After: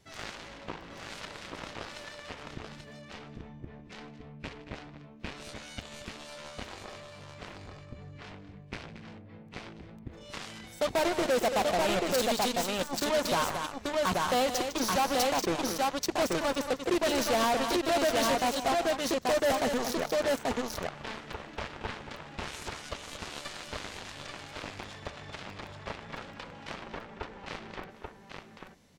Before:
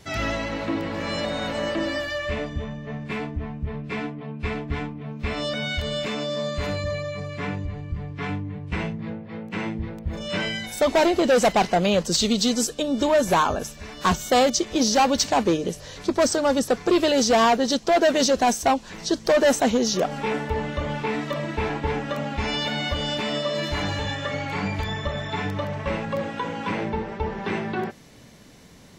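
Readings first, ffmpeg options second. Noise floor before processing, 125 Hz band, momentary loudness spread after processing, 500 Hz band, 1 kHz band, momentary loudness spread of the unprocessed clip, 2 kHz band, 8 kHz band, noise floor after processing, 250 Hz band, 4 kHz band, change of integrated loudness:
-42 dBFS, -14.0 dB, 20 LU, -8.0 dB, -7.5 dB, 12 LU, -7.5 dB, -8.0 dB, -51 dBFS, -10.5 dB, -8.0 dB, -6.5 dB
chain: -af "aeval=exprs='0.224*(cos(1*acos(clip(val(0)/0.224,-1,1)))-cos(1*PI/2))+0.0891*(cos(3*acos(clip(val(0)/0.224,-1,1)))-cos(3*PI/2))':c=same,aecho=1:1:153|228|834:0.112|0.188|0.531,asoftclip=type=tanh:threshold=0.0708"

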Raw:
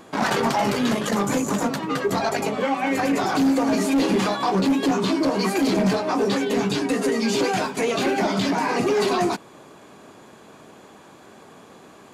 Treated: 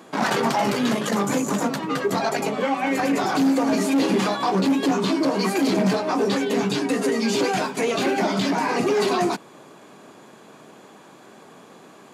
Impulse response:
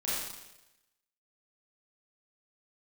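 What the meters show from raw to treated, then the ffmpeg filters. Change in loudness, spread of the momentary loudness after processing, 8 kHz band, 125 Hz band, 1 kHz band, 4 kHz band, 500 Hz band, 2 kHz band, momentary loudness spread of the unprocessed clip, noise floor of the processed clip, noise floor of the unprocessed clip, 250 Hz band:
0.0 dB, 4 LU, 0.0 dB, -0.5 dB, 0.0 dB, 0.0 dB, 0.0 dB, 0.0 dB, 4 LU, -48 dBFS, -47 dBFS, 0.0 dB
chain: -af "highpass=f=120:w=0.5412,highpass=f=120:w=1.3066"

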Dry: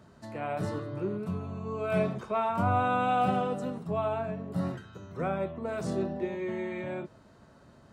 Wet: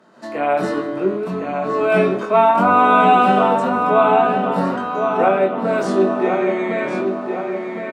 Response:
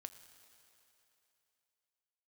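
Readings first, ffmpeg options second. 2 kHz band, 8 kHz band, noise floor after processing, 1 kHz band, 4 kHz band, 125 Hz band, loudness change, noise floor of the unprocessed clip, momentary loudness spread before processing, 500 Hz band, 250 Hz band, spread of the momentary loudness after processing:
+16.0 dB, no reading, -28 dBFS, +16.0 dB, +14.5 dB, +4.5 dB, +14.5 dB, -57 dBFS, 10 LU, +15.5 dB, +13.0 dB, 11 LU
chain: -filter_complex "[0:a]highpass=f=220:w=0.5412,highpass=f=220:w=1.3066,aemphasis=mode=reproduction:type=cd,dynaudnorm=f=110:g=3:m=2.82,asplit=2[s0][s1];[s1]adelay=21,volume=0.631[s2];[s0][s2]amix=inputs=2:normalize=0,asplit=2[s3][s4];[s4]adelay=1062,lowpass=f=3700:p=1,volume=0.531,asplit=2[s5][s6];[s6]adelay=1062,lowpass=f=3700:p=1,volume=0.51,asplit=2[s7][s8];[s8]adelay=1062,lowpass=f=3700:p=1,volume=0.51,asplit=2[s9][s10];[s10]adelay=1062,lowpass=f=3700:p=1,volume=0.51,asplit=2[s11][s12];[s12]adelay=1062,lowpass=f=3700:p=1,volume=0.51,asplit=2[s13][s14];[s14]adelay=1062,lowpass=f=3700:p=1,volume=0.51[s15];[s3][s5][s7][s9][s11][s13][s15]amix=inputs=7:normalize=0,asplit=2[s16][s17];[1:a]atrim=start_sample=2205,lowshelf=f=410:g=-7.5[s18];[s17][s18]afir=irnorm=-1:irlink=0,volume=1.78[s19];[s16][s19]amix=inputs=2:normalize=0"

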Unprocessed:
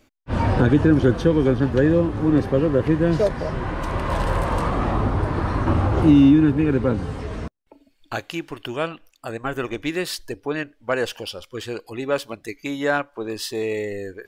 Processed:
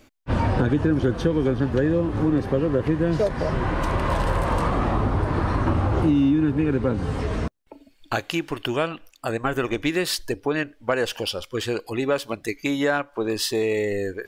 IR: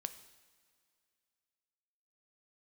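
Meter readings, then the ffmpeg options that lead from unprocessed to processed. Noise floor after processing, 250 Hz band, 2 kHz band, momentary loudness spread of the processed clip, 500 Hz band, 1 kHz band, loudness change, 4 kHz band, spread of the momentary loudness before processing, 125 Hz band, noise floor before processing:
-56 dBFS, -3.5 dB, 0.0 dB, 7 LU, -1.0 dB, 0.0 dB, -2.5 dB, +2.5 dB, 15 LU, -2.0 dB, -61 dBFS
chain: -af "acompressor=threshold=0.0562:ratio=3,volume=1.78"

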